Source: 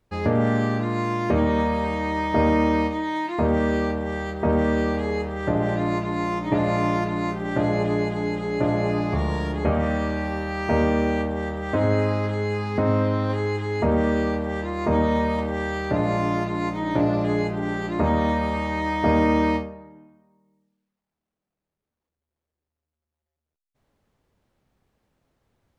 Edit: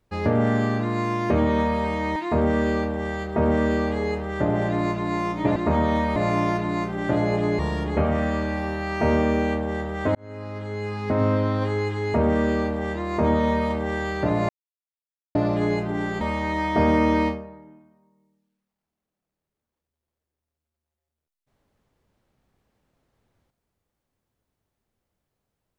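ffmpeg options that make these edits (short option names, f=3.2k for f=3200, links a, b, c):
-filter_complex "[0:a]asplit=9[a][b][c][d][e][f][g][h][i];[a]atrim=end=2.162[j];[b]atrim=start=3.228:end=6.632[k];[c]atrim=start=17.888:end=18.492[l];[d]atrim=start=6.628:end=8.062[m];[e]atrim=start=9.268:end=11.83,asetpts=PTS-STARTPTS,afade=t=out:st=2.558:d=0.004:c=hsin[n];[f]atrim=start=11.83:end=16.17,asetpts=PTS-STARTPTS,afade=t=in:d=1.11,afade=t=out:st=4.336:d=0.004:c=hsin[o];[g]atrim=start=16.17:end=17.03,asetpts=PTS-STARTPTS,volume=0[p];[h]atrim=start=17.03:end=17.892,asetpts=PTS-STARTPTS,afade=t=in:d=0.004:c=hsin[q];[i]atrim=start=18.488[r];[j][k]acrossfade=d=0.004:c1=hsin:c2=hsin[s];[s][l]acrossfade=d=0.004:c1=hsin:c2=hsin[t];[t][m]acrossfade=d=0.004:c1=hsin:c2=hsin[u];[n][o][p][q]concat=n=4:v=0:a=1[v];[u][v]acrossfade=d=0.004:c1=hsin:c2=hsin[w];[w][r]acrossfade=d=0.004:c1=hsin:c2=hsin"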